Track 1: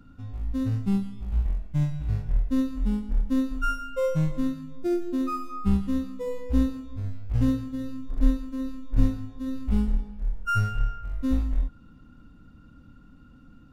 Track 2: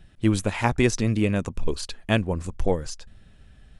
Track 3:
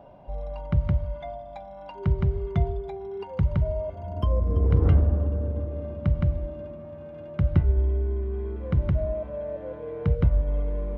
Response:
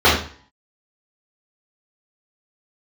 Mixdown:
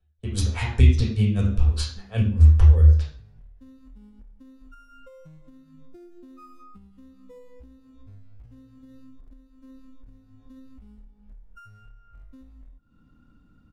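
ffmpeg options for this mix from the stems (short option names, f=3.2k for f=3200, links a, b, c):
-filter_complex "[0:a]acompressor=threshold=-32dB:ratio=12,alimiter=level_in=9dB:limit=-24dB:level=0:latency=1:release=428,volume=-9dB,adelay=1100,volume=-6.5dB[a];[1:a]agate=range=-28dB:threshold=-38dB:ratio=16:detection=peak,lowshelf=f=100:t=q:w=1.5:g=6.5,aeval=exprs='val(0)*pow(10,-33*(0.5-0.5*cos(2*PI*5*n/s))/20)':c=same,volume=2dB,asplit=2[b][c];[c]volume=-19dB[d];[3:a]atrim=start_sample=2205[e];[d][e]afir=irnorm=-1:irlink=0[f];[a][b][f]amix=inputs=3:normalize=0,acrossover=split=180|3000[g][h][i];[h]acompressor=threshold=-33dB:ratio=6[j];[g][j][i]amix=inputs=3:normalize=0"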